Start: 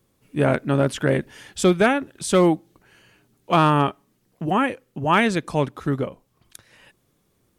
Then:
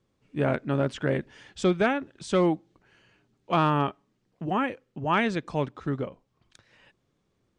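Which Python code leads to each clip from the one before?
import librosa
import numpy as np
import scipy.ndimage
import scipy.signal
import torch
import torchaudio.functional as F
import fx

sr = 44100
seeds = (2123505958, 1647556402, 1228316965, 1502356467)

y = scipy.signal.sosfilt(scipy.signal.bessel(8, 5200.0, 'lowpass', norm='mag', fs=sr, output='sos'), x)
y = y * 10.0 ** (-6.0 / 20.0)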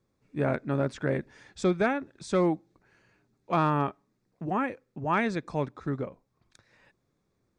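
y = fx.peak_eq(x, sr, hz=3000.0, db=-14.0, octaves=0.22)
y = y * 10.0 ** (-2.0 / 20.0)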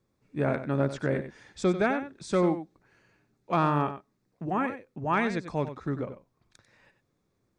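y = x + 10.0 ** (-11.0 / 20.0) * np.pad(x, (int(94 * sr / 1000.0), 0))[:len(x)]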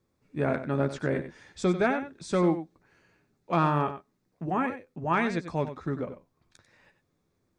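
y = fx.doubler(x, sr, ms=12.0, db=-10.5)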